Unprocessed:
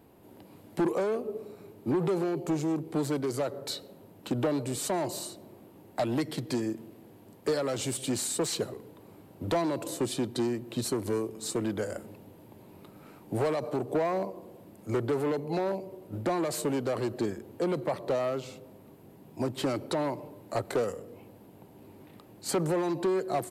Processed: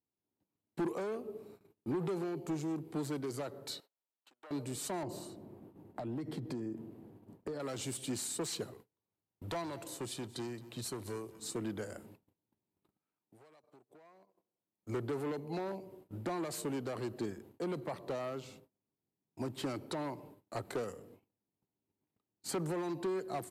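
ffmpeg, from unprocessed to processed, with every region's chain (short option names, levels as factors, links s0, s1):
-filter_complex "[0:a]asettb=1/sr,asplit=3[s0][s1][s2];[s0]atrim=end=3.804[s3];[s1]atrim=start=3.8:end=4.51,asetpts=PTS-STARTPTS,afade=t=in:d=0.004:c=qsin,afade=t=out:st=0.706:d=0.004:c=qsin,acompressor=threshold=0.0355:ratio=16:attack=3.2:release=140:knee=1:detection=peak,highpass=940,highshelf=f=2600:g=-7[s4];[s2]atrim=start=4.506[s5];[s3][s4]acrossfade=d=0.004:c1=hsin:c2=qsin[s6];[s6][s5]acrossfade=d=0.004:c1=qsin:c2=hsin,asettb=1/sr,asplit=3[s7][s8][s9];[s7]atrim=end=5.034[s10];[s8]atrim=start=5.03:end=7.6,asetpts=PTS-STARTPTS,afade=t=in:d=0.004:c=qsin,afade=t=out:st=2.566:d=0.004:c=qsin,tiltshelf=f=1400:g=7.5,acompressor=threshold=0.0398:ratio=6:attack=3.2:release=140:knee=1:detection=peak[s11];[s9]atrim=start=7.596[s12];[s10][s11]acrossfade=d=0.004:c1=hsin:c2=qsin[s13];[s13][s12]acrossfade=d=0.004:c1=qsin:c2=hsin,asettb=1/sr,asplit=3[s14][s15][s16];[s14]atrim=end=8.714[s17];[s15]atrim=start=8.71:end=11.4,asetpts=PTS-STARTPTS,afade=t=in:d=0.004:c=qsin,afade=t=out:st=2.686:d=0.004:c=qsin,equalizer=f=270:t=o:w=1.3:g=-6.5,aecho=1:1:220:0.133,atrim=end_sample=118629[s18];[s16]atrim=start=11.396[s19];[s17][s18]acrossfade=d=0.004:c1=hsin:c2=qsin[s20];[s20][s19]acrossfade=d=0.004:c1=qsin:c2=hsin,asettb=1/sr,asplit=3[s21][s22][s23];[s21]atrim=end=12.974[s24];[s22]atrim=start=12.97:end=14.83,asetpts=PTS-STARTPTS,afade=t=in:d=0.004:c=qsin,afade=t=out:st=1.856:d=0.004:c=qsin,highpass=50,lowshelf=f=440:g=-8,acompressor=threshold=0.00631:ratio=12:attack=3.2:release=140:knee=1:detection=peak[s25];[s23]atrim=start=14.826[s26];[s24][s25]acrossfade=d=0.004:c1=hsin:c2=qsin[s27];[s27][s26]acrossfade=d=0.004:c1=qsin:c2=hsin,agate=range=0.0282:threshold=0.00501:ratio=16:detection=peak,equalizer=f=560:t=o:w=0.64:g=-4.5,volume=0.447"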